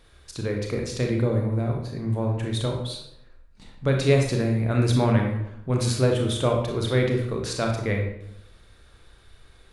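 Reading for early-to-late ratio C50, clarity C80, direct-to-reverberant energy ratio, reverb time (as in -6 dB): 4.0 dB, 7.5 dB, 1.0 dB, 0.85 s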